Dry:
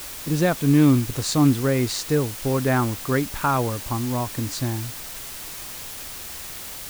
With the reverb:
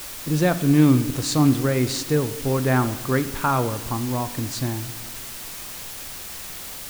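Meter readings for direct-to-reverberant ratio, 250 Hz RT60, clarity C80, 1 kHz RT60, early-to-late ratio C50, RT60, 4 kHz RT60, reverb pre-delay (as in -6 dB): 11.0 dB, 2.0 s, 15.0 dB, 1.2 s, 13.5 dB, 1.4 s, 0.90 s, 4 ms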